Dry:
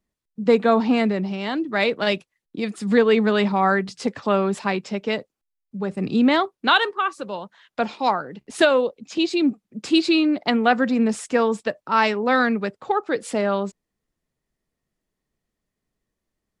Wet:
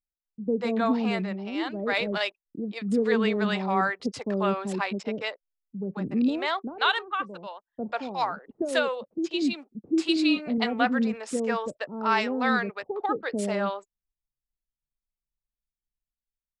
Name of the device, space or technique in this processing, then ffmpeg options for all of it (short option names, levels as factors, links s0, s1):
voice memo with heavy noise removal: -filter_complex "[0:a]asettb=1/sr,asplit=3[s0][s1][s2];[s0]atrim=end=10.144[s3];[s1]atrim=start=10.14:end=10.58,asetpts=PTS-STARTPTS,afade=t=in:d=0.004:c=qsin,afade=t=out:st=0.436:d=0.004:c=qsin,asplit=2[s4][s5];[s5]adelay=20,volume=0.447[s6];[s4][s6]amix=inputs=2:normalize=0,atrim=end_sample=19404[s7];[s2]atrim=start=10.576[s8];[s3][s7]acrossfade=d=0.004:c1=hsin:c2=qsin[s9];[s9][s8]acrossfade=d=0.004:c1=qsin:c2=hsin,anlmdn=1,dynaudnorm=f=120:g=11:m=1.78,acrossover=split=520[s10][s11];[s11]adelay=140[s12];[s10][s12]amix=inputs=2:normalize=0,volume=0.398"